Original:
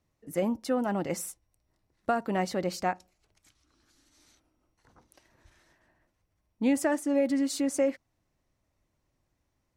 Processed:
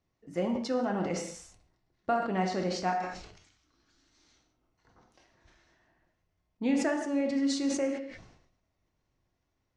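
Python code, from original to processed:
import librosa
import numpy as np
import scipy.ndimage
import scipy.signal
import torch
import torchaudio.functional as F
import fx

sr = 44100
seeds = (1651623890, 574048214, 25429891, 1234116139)

y = scipy.signal.sosfilt(scipy.signal.butter(4, 6300.0, 'lowpass', fs=sr, output='sos'), x)
y = fx.rev_gated(y, sr, seeds[0], gate_ms=230, shape='falling', drr_db=2.5)
y = fx.sustainer(y, sr, db_per_s=69.0)
y = y * librosa.db_to_amplitude(-3.5)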